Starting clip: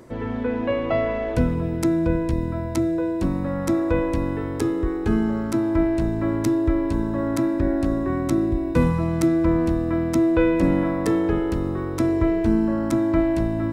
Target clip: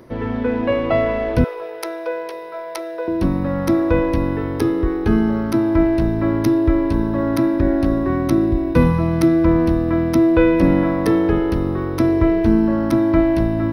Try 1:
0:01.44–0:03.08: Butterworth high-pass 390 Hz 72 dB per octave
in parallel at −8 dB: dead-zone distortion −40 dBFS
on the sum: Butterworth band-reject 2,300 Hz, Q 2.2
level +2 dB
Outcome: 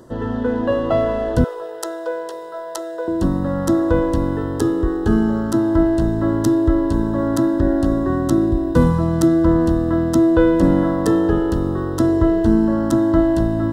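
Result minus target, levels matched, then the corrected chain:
8,000 Hz band +5.0 dB
0:01.44–0:03.08: Butterworth high-pass 390 Hz 72 dB per octave
in parallel at −8 dB: dead-zone distortion −40 dBFS
on the sum: Butterworth band-reject 7,500 Hz, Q 2.2
level +2 dB

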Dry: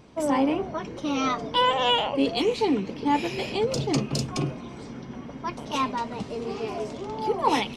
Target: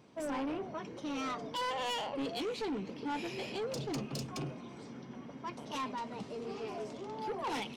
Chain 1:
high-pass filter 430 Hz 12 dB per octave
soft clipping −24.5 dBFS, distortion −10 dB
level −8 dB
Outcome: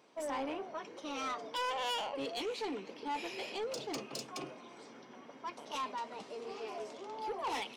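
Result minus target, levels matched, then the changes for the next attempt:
125 Hz band −14.0 dB
change: high-pass filter 120 Hz 12 dB per octave

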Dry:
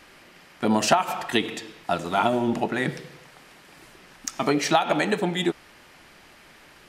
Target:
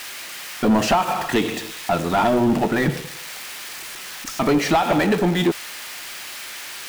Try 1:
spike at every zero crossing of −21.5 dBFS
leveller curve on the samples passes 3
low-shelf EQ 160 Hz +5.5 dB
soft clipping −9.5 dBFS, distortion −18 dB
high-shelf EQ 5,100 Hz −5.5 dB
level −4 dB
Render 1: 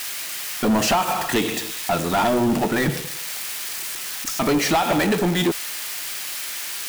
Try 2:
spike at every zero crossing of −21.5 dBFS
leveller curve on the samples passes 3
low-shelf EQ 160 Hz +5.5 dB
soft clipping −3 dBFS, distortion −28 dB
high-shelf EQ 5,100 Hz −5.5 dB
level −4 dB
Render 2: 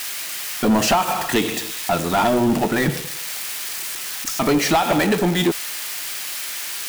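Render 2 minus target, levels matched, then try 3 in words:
8,000 Hz band +5.5 dB
spike at every zero crossing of −21.5 dBFS
leveller curve on the samples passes 3
low-shelf EQ 160 Hz +5.5 dB
soft clipping −3 dBFS, distortion −28 dB
high-shelf EQ 5,100 Hz −15.5 dB
level −4 dB

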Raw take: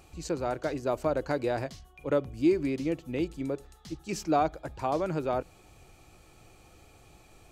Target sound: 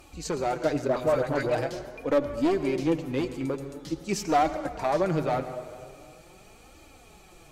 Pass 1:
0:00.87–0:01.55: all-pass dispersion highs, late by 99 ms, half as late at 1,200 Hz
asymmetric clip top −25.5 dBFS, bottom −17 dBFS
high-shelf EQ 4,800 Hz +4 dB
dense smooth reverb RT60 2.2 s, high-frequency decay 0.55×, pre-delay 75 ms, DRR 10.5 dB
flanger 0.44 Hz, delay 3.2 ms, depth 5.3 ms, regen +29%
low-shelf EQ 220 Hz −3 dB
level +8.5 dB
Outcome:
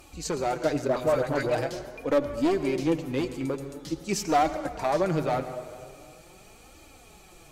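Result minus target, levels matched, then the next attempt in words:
8,000 Hz band +2.5 dB
0:00.87–0:01.55: all-pass dispersion highs, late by 99 ms, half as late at 1,200 Hz
asymmetric clip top −25.5 dBFS, bottom −17 dBFS
dense smooth reverb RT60 2.2 s, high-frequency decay 0.55×, pre-delay 75 ms, DRR 10.5 dB
flanger 0.44 Hz, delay 3.2 ms, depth 5.3 ms, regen +29%
low-shelf EQ 220 Hz −3 dB
level +8.5 dB

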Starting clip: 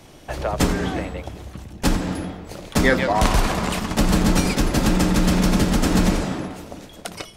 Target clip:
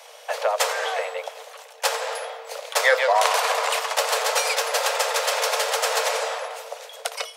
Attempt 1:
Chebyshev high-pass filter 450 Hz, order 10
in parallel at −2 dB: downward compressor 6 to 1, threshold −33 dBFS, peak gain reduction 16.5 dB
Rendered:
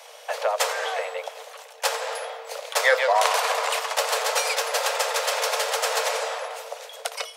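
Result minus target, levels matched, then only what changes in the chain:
downward compressor: peak gain reduction +6 dB
change: downward compressor 6 to 1, threshold −26 dBFS, peak gain reduction 10.5 dB

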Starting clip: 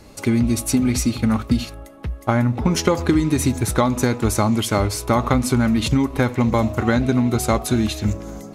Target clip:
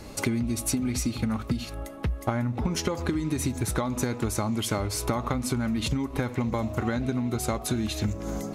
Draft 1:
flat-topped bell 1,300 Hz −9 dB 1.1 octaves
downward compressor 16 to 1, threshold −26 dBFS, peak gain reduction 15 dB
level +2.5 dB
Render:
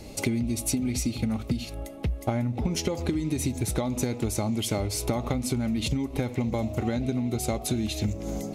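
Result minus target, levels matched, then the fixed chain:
1,000 Hz band −3.0 dB
downward compressor 16 to 1, threshold −26 dBFS, peak gain reduction 15.5 dB
level +2.5 dB

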